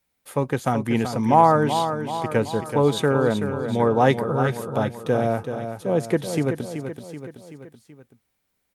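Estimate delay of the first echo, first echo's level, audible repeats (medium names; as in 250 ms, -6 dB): 380 ms, -8.5 dB, 4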